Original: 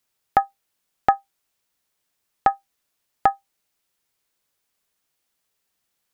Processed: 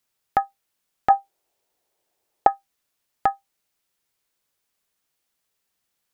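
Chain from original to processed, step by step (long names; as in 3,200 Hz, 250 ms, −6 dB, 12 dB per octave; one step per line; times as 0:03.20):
0:01.10–0:02.47: flat-topped bell 530 Hz +10.5 dB
in parallel at −1.5 dB: brickwall limiter −8.5 dBFS, peak gain reduction 12 dB
on the sum: level −6.5 dB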